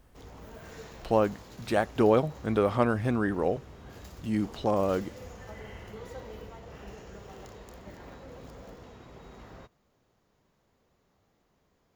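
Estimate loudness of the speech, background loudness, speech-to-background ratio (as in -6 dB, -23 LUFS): -27.5 LUFS, -47.0 LUFS, 19.5 dB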